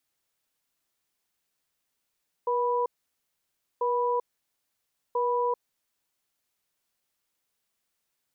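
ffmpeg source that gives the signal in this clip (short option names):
-f lavfi -i "aevalsrc='0.0501*(sin(2*PI*482*t)+sin(2*PI*984*t))*clip(min(mod(t,1.34),0.39-mod(t,1.34))/0.005,0,1)':d=3.59:s=44100"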